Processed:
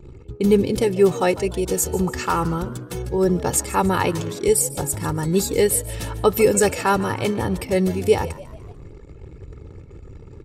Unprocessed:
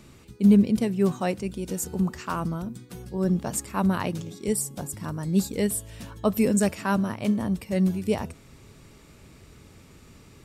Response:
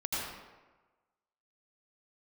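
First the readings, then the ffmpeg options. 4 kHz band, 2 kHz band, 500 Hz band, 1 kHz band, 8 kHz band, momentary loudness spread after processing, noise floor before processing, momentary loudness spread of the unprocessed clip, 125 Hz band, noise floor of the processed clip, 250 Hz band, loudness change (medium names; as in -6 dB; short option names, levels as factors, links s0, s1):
+9.0 dB, +8.0 dB, +10.5 dB, +9.5 dB, +9.0 dB, 11 LU, -52 dBFS, 10 LU, +3.0 dB, -43 dBFS, 0.0 dB, +5.0 dB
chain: -filter_complex "[0:a]aecho=1:1:2.3:0.73,anlmdn=0.0158,asplit=2[s0][s1];[s1]acompressor=threshold=0.0224:ratio=5,volume=1[s2];[s0][s2]amix=inputs=2:normalize=0,asplit=5[s3][s4][s5][s6][s7];[s4]adelay=147,afreqshift=71,volume=0.133[s8];[s5]adelay=294,afreqshift=142,volume=0.0603[s9];[s6]adelay=441,afreqshift=213,volume=0.0269[s10];[s7]adelay=588,afreqshift=284,volume=0.0122[s11];[s3][s8][s9][s10][s11]amix=inputs=5:normalize=0,volume=1.68"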